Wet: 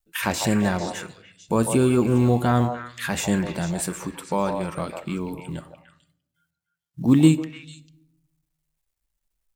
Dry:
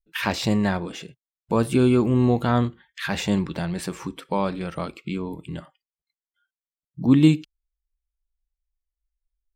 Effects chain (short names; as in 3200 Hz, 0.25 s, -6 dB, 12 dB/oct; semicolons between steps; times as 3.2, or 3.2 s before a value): resonant high shelf 6100 Hz +8 dB, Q 1.5; wow and flutter 26 cents; companded quantiser 8-bit; delay with a stepping band-pass 0.149 s, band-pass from 700 Hz, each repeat 1.4 oct, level -3 dB; on a send at -16.5 dB: reverb RT60 0.75 s, pre-delay 6 ms